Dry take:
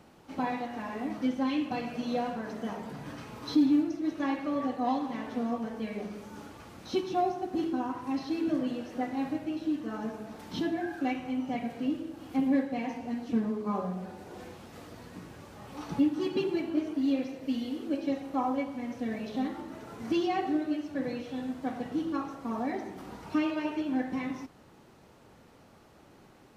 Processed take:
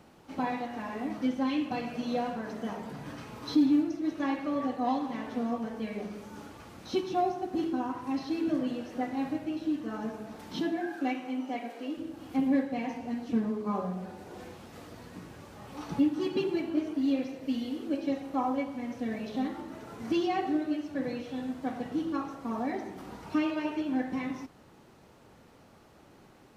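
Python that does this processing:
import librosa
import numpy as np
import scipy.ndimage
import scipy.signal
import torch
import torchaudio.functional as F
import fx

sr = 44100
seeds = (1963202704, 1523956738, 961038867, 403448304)

y = fx.highpass(x, sr, hz=fx.line((10.53, 140.0), (11.96, 340.0)), slope=24, at=(10.53, 11.96), fade=0.02)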